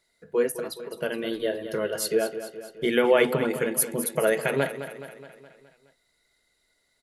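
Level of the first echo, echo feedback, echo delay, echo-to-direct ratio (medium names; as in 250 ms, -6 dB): -11.5 dB, 56%, 210 ms, -10.0 dB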